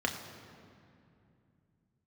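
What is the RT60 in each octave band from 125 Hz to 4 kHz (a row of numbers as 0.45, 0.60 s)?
4.3, 3.6, 2.7, 2.4, 2.2, 1.6 s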